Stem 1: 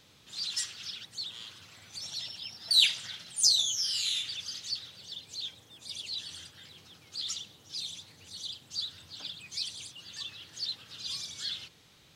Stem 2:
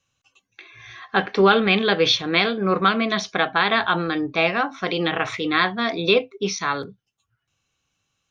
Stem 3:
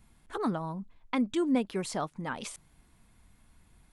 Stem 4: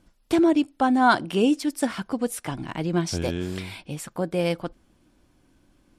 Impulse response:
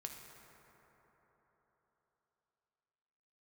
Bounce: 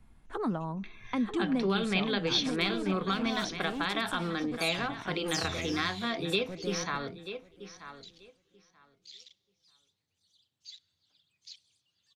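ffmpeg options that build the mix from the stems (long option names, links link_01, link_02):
-filter_complex "[0:a]afwtdn=0.0158,adelay=1900,volume=-14dB,asplit=2[link_01][link_02];[link_02]volume=-12.5dB[link_03];[1:a]adelay=250,volume=-8dB,asplit=2[link_04][link_05];[link_05]volume=-15dB[link_06];[2:a]highshelf=frequency=3600:gain=-10.5,bandreject=frequency=50:width_type=h:width=6,bandreject=frequency=100:width_type=h:width=6,bandreject=frequency=150:width_type=h:width=6,volume=0dB,asplit=3[link_07][link_08][link_09];[link_08]volume=-23dB[link_10];[link_09]volume=-7.5dB[link_11];[3:a]asoftclip=type=hard:threshold=-20dB,adelay=2300,volume=-12dB,asplit=2[link_12][link_13];[link_13]volume=-21.5dB[link_14];[4:a]atrim=start_sample=2205[link_15];[link_03][link_10]amix=inputs=2:normalize=0[link_16];[link_16][link_15]afir=irnorm=-1:irlink=0[link_17];[link_06][link_11][link_14]amix=inputs=3:normalize=0,aecho=0:1:935|1870|2805:1|0.16|0.0256[link_18];[link_01][link_04][link_07][link_12][link_17][link_18]amix=inputs=6:normalize=0,lowshelf=frequency=81:gain=5.5,acrossover=split=220|3000[link_19][link_20][link_21];[link_20]acompressor=threshold=-30dB:ratio=6[link_22];[link_19][link_22][link_21]amix=inputs=3:normalize=0"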